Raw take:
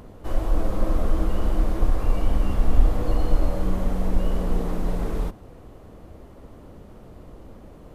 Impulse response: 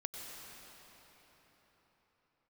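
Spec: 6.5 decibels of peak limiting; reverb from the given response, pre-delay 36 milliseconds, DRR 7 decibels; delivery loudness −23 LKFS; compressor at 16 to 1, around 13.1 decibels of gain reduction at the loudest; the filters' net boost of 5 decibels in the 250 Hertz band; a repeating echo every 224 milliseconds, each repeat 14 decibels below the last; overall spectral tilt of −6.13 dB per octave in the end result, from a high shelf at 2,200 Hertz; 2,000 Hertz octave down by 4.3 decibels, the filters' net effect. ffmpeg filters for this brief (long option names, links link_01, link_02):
-filter_complex "[0:a]equalizer=frequency=250:width_type=o:gain=7,equalizer=frequency=2000:width_type=o:gain=-4,highshelf=frequency=2200:gain=-3.5,acompressor=threshold=-20dB:ratio=16,alimiter=limit=-20.5dB:level=0:latency=1,aecho=1:1:224|448:0.2|0.0399,asplit=2[link_01][link_02];[1:a]atrim=start_sample=2205,adelay=36[link_03];[link_02][link_03]afir=irnorm=-1:irlink=0,volume=-6.5dB[link_04];[link_01][link_04]amix=inputs=2:normalize=0,volume=11dB"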